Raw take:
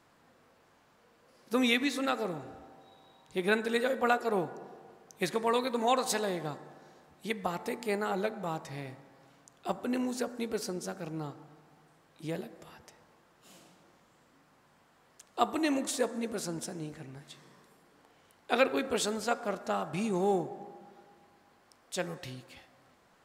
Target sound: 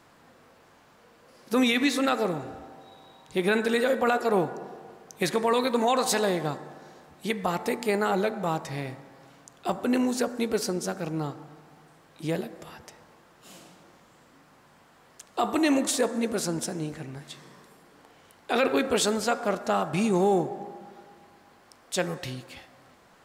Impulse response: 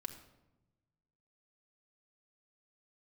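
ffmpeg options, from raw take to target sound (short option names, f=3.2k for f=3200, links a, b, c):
-af "alimiter=limit=-21.5dB:level=0:latency=1:release=18,volume=7.5dB"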